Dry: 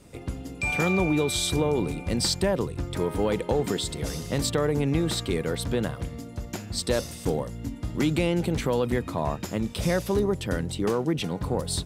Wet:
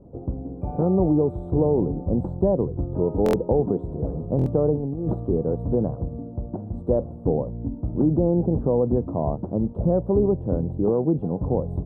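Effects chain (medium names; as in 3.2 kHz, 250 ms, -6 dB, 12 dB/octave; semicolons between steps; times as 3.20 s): 4.74–5.14 s: compressor with a negative ratio -28 dBFS, ratio -0.5; inverse Chebyshev low-pass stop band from 2 kHz, stop band 50 dB; buffer glitch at 3.24/4.37 s, samples 1024, times 3; trim +4.5 dB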